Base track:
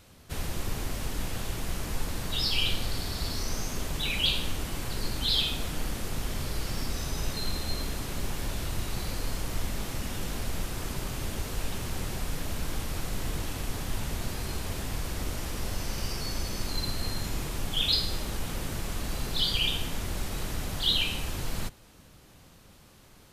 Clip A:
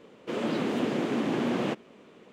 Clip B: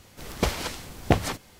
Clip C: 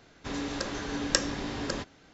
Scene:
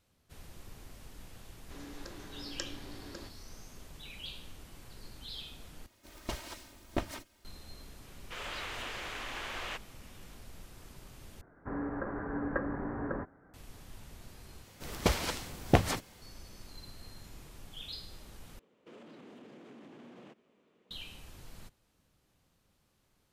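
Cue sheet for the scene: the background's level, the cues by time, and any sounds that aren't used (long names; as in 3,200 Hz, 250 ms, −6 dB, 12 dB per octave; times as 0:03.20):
base track −18 dB
0:01.45: mix in C −15.5 dB + parametric band 340 Hz +7.5 dB 0.23 octaves
0:05.86: overwrite with B −12 dB + lower of the sound and its delayed copy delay 3.2 ms
0:08.03: mix in A −0.5 dB + high-pass filter 1,300 Hz
0:11.41: overwrite with C −2 dB + Butterworth low-pass 1,700 Hz 48 dB per octave
0:14.63: overwrite with B −3 dB
0:18.59: overwrite with A −16.5 dB + brickwall limiter −28.5 dBFS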